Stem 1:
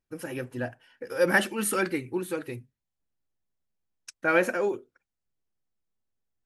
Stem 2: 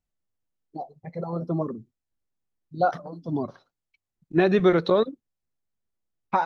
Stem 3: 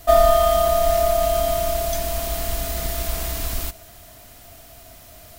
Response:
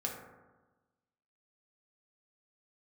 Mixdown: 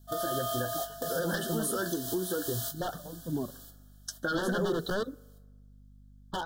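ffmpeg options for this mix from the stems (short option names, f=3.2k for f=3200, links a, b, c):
-filter_complex "[0:a]flanger=delay=8:depth=5.1:regen=34:speed=0.32:shape=triangular,aeval=exprs='0.266*sin(PI/2*3.16*val(0)/0.266)':c=same,aeval=exprs='val(0)+0.00251*(sin(2*PI*50*n/s)+sin(2*PI*2*50*n/s)/2+sin(2*PI*3*50*n/s)/3+sin(2*PI*4*50*n/s)/4+sin(2*PI*5*50*n/s)/5)':c=same,volume=-1.5dB,asplit=2[a][b];[1:a]aeval=exprs='0.112*(abs(mod(val(0)/0.112+3,4)-2)-1)':c=same,volume=-5dB,asplit=2[c][d];[d]volume=-23.5dB[e];[2:a]highpass=f=1.4k:p=1,volume=-4dB,asplit=2[f][g];[g]volume=-17dB[h];[b]apad=whole_len=237305[i];[f][i]sidechaingate=range=-33dB:threshold=-42dB:ratio=16:detection=peak[j];[a][j]amix=inputs=2:normalize=0,acompressor=threshold=-27dB:ratio=6,volume=0dB[k];[3:a]atrim=start_sample=2205[l];[e][h]amix=inputs=2:normalize=0[m];[m][l]afir=irnorm=-1:irlink=0[n];[c][k][n]amix=inputs=3:normalize=0,asuperstop=centerf=2300:order=20:qfactor=1.9,equalizer=f=870:t=o:w=0.87:g=-6.5,alimiter=limit=-21dB:level=0:latency=1:release=147"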